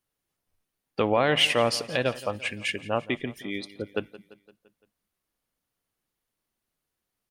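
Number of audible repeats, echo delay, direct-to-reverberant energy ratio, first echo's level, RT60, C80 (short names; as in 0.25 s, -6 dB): 4, 0.171 s, none, -18.0 dB, none, none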